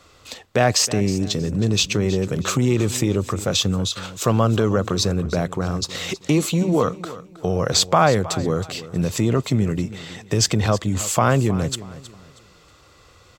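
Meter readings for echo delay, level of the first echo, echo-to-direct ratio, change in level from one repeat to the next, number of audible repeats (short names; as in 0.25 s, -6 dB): 0.318 s, -16.0 dB, -15.5 dB, -10.5 dB, 2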